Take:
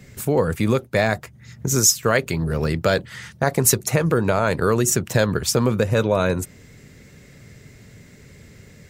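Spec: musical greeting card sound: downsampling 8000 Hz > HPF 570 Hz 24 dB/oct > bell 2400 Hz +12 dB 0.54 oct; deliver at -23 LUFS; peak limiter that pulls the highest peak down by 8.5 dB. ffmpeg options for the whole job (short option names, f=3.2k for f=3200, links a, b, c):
-af "alimiter=limit=-9.5dB:level=0:latency=1,aresample=8000,aresample=44100,highpass=f=570:w=0.5412,highpass=f=570:w=1.3066,equalizer=f=2.4k:t=o:w=0.54:g=12,volume=3dB"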